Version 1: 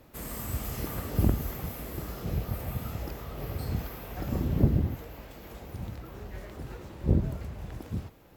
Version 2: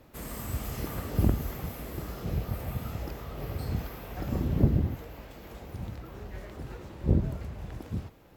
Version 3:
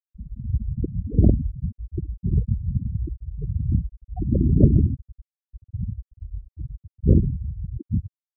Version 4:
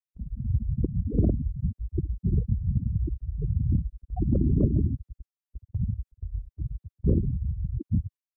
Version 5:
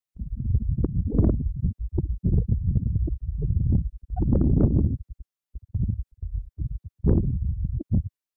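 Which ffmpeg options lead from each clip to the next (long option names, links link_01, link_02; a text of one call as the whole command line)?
ffmpeg -i in.wav -af "highshelf=frequency=8700:gain=-4.5" out.wav
ffmpeg -i in.wav -filter_complex "[0:a]afftfilt=real='re*gte(hypot(re,im),0.0794)':imag='im*gte(hypot(re,im),0.0794)':win_size=1024:overlap=0.75,asplit=2[link_01][link_02];[link_02]alimiter=limit=-18dB:level=0:latency=1:release=469,volume=-2.5dB[link_03];[link_01][link_03]amix=inputs=2:normalize=0,volume=5.5dB" out.wav
ffmpeg -i in.wav -filter_complex "[0:a]acrossover=split=96|290[link_01][link_02][link_03];[link_01]acompressor=threshold=-26dB:ratio=4[link_04];[link_02]acompressor=threshold=-27dB:ratio=4[link_05];[link_03]acompressor=threshold=-30dB:ratio=4[link_06];[link_04][link_05][link_06]amix=inputs=3:normalize=0,agate=range=-9dB:threshold=-44dB:ratio=16:detection=peak,volume=1dB" out.wav
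ffmpeg -i in.wav -af "aeval=exprs='0.316*(cos(1*acos(clip(val(0)/0.316,-1,1)))-cos(1*PI/2))+0.0178*(cos(6*acos(clip(val(0)/0.316,-1,1)))-cos(6*PI/2))':channel_layout=same,volume=2.5dB" out.wav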